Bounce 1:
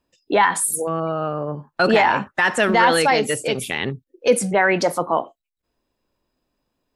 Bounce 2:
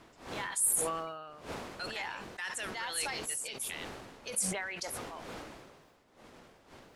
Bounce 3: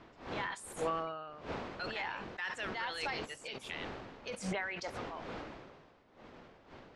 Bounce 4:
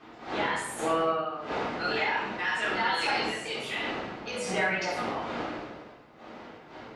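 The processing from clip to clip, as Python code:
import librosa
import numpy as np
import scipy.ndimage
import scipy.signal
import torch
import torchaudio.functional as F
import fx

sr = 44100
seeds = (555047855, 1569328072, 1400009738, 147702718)

y1 = fx.dmg_wind(x, sr, seeds[0], corner_hz=410.0, level_db=-18.0)
y1 = librosa.effects.preemphasis(y1, coef=0.97, zi=[0.0])
y1 = fx.sustainer(y1, sr, db_per_s=37.0)
y1 = y1 * 10.0 ** (-9.0 / 20.0)
y2 = fx.air_absorb(y1, sr, metres=170.0)
y2 = y2 * 10.0 ** (1.5 / 20.0)
y3 = fx.highpass(y2, sr, hz=290.0, slope=6)
y3 = fx.room_shoebox(y3, sr, seeds[1], volume_m3=270.0, walls='mixed', distance_m=3.7)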